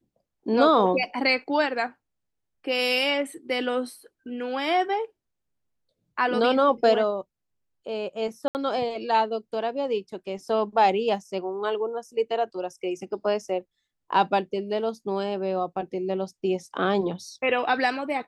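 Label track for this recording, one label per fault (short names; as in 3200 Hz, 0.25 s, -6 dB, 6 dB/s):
8.480000	8.550000	gap 69 ms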